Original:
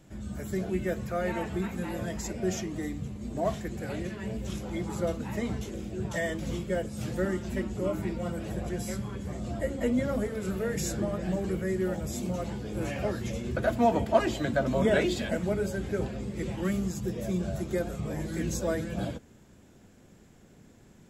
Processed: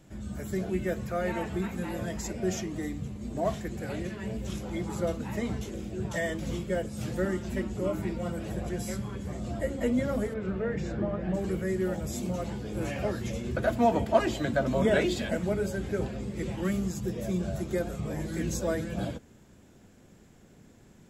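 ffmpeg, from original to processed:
-filter_complex "[0:a]asplit=3[a][b][c];[a]afade=t=out:st=10.33:d=0.02[d];[b]lowpass=2.4k,afade=t=in:st=10.33:d=0.02,afade=t=out:st=11.33:d=0.02[e];[c]afade=t=in:st=11.33:d=0.02[f];[d][e][f]amix=inputs=3:normalize=0"

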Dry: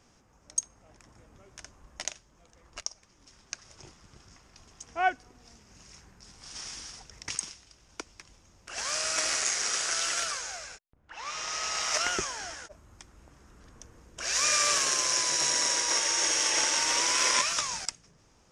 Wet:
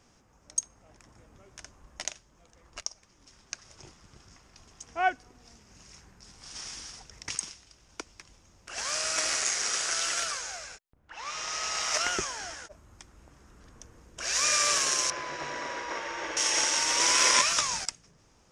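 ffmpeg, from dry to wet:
-filter_complex "[0:a]asettb=1/sr,asplit=3[a][b][c];[a]atrim=end=15.104[d];[b]atrim=start=15.1:end=16.37,asetpts=PTS-STARTPTS,afade=t=in:d=0.004:c=qsin,afade=t=out:st=1.266:d=0.004:c=qsin,lowpass=1.9k[e];[c]atrim=start=16.366[f];[d][e]acrossfade=d=0.004:c1=hsin:c2=qsin[g];[g][f]acrossfade=d=0.004:c1=qsin:c2=hsin,asplit=3[h][i][j];[h]atrim=end=17.002[k];[i]atrim=start=16.998:end=17.842,asetpts=PTS-STARTPTS,volume=3dB[l];[j]atrim=start=17.838[m];[k][l]acrossfade=d=0.004:c1=hsin:c2=hsin[n];[n][m]acrossfade=d=0.004:c1=hsin:c2=hsin"

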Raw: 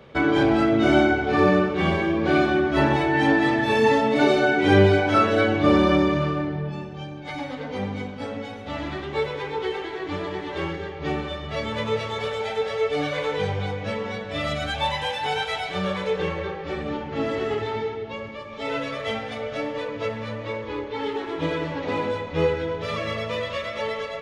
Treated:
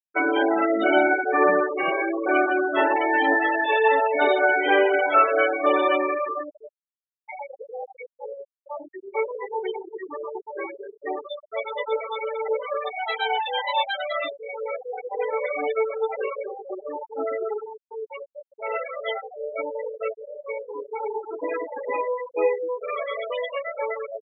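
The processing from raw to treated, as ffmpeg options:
-filter_complex "[0:a]asettb=1/sr,asplit=3[a][b][c];[a]atrim=end=3.344[d];[b]atrim=start=3.34:end=7.87,asetpts=PTS-STARTPTS,afade=t=in:d=0.004:c=qsin,afade=t=out:st=4.526:d=0.004:c=qsin,highpass=340,lowpass=6.3k[e];[c]atrim=start=7.866[f];[d][e]acrossfade=d=0.004:c1=hsin:c2=qsin[g];[g][f]acrossfade=d=0.004:c1=qsin:c2=hsin,asplit=4[h][i][j][k];[h]atrim=end=12.482[l];[i]atrim=start=12.478:end=16.162,asetpts=PTS-STARTPTS,areverse[m];[j]atrim=start=16.158:end=17.91,asetpts=PTS-STARTPTS,afade=t=out:st=1.132:d=0.62:c=qsin[n];[k]atrim=start=17.91,asetpts=PTS-STARTPTS,afade=t=in:d=0.004:c=hsin[o];[l][m]acrossfade=d=0.004:c1=hsin:c2=hsin[p];[n][o]concat=n=2:v=0:a=1[q];[p][q]acrossfade=d=0.004:c1=hsin:c2=hsin,anlmdn=2.51,acrossover=split=360 4800:gain=0.0631 1 0.158[r][s][t];[r][s][t]amix=inputs=3:normalize=0,afftfilt=real='re*gte(hypot(re,im),0.1)':imag='im*gte(hypot(re,im),0.1)':win_size=1024:overlap=0.75,volume=3dB"

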